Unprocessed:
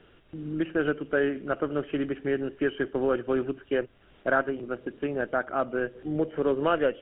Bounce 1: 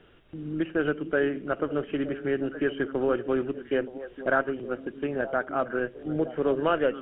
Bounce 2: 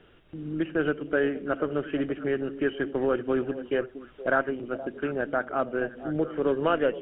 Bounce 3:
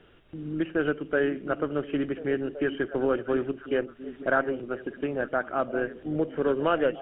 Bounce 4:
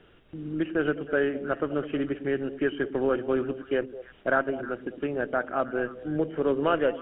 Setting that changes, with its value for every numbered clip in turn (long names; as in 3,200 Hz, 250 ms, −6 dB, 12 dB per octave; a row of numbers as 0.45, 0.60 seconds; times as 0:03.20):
echo through a band-pass that steps, delay time: 461, 235, 709, 104 milliseconds